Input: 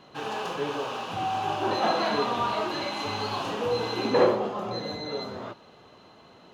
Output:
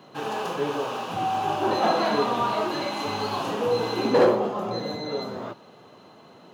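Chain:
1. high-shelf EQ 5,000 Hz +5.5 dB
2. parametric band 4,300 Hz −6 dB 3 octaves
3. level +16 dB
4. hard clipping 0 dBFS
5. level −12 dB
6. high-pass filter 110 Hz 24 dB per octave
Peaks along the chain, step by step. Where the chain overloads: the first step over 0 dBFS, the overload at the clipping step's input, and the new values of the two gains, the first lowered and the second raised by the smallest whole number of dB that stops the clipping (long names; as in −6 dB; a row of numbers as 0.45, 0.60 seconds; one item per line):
−8.5, −9.5, +6.5, 0.0, −12.0, −8.0 dBFS
step 3, 6.5 dB
step 3 +9 dB, step 5 −5 dB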